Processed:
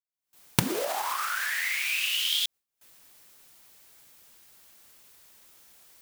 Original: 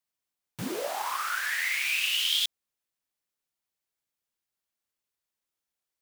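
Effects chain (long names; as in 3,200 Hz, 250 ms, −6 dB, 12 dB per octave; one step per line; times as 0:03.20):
camcorder AGC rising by 80 dB per second
noise gate with hold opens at −50 dBFS
high-shelf EQ 11,000 Hz +4.5 dB
level −1 dB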